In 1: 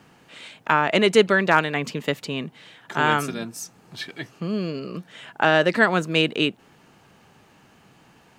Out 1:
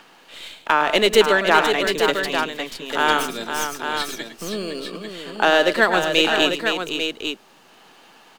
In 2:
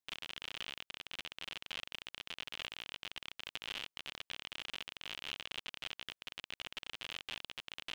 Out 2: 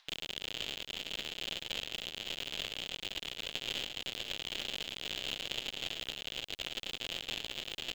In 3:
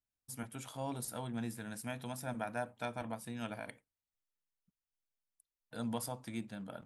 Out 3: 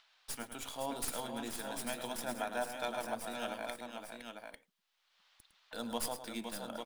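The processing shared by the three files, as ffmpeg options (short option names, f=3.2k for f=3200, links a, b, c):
-filter_complex "[0:a]highpass=320,highshelf=f=2.9k:t=q:w=1.5:g=6,aecho=1:1:106|512|847:0.299|0.422|0.447,acrossover=split=750|3500[a][b][c];[b]acompressor=mode=upward:threshold=-48dB:ratio=2.5[d];[c]aeval=exprs='max(val(0),0)':c=same[e];[a][d][e]amix=inputs=3:normalize=0,volume=2.5dB"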